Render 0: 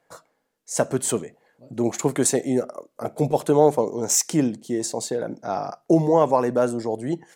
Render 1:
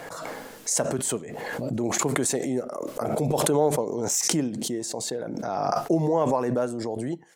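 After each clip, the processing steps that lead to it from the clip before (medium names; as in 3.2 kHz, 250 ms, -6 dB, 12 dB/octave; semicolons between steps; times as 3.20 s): swell ahead of each attack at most 22 dB/s; trim -6 dB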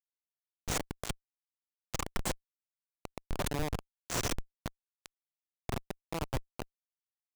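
bass shelf 480 Hz -9 dB; Chebyshev shaper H 8 -22 dB, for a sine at -1.5 dBFS; Schmitt trigger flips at -22 dBFS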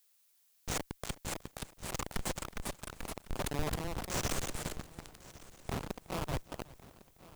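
ever faster or slower copies 645 ms, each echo +2 st, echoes 2; multi-head delay 368 ms, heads first and third, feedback 41%, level -20 dB; added noise blue -67 dBFS; trim -2.5 dB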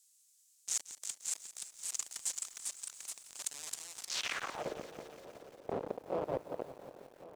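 in parallel at -6 dB: hard clipper -39 dBFS, distortion -5 dB; on the sum: band-pass sweep 7.4 kHz -> 510 Hz, 4.01–4.68 s; bit-crushed delay 173 ms, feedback 80%, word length 10-bit, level -14.5 dB; trim +7 dB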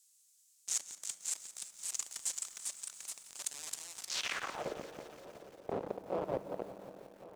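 reverberation RT60 2.5 s, pre-delay 5 ms, DRR 14.5 dB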